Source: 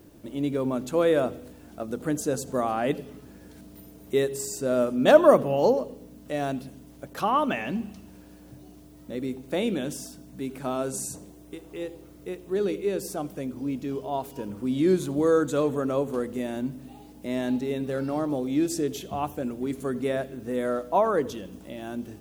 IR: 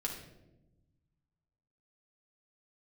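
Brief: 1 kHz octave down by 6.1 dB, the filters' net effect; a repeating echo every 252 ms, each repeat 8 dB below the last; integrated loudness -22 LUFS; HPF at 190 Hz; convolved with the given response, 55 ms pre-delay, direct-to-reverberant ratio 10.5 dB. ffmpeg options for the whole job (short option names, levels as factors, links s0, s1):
-filter_complex "[0:a]highpass=190,equalizer=f=1000:t=o:g=-8.5,aecho=1:1:252|504|756|1008|1260:0.398|0.159|0.0637|0.0255|0.0102,asplit=2[s0][s1];[1:a]atrim=start_sample=2205,adelay=55[s2];[s1][s2]afir=irnorm=-1:irlink=0,volume=0.251[s3];[s0][s3]amix=inputs=2:normalize=0,volume=2"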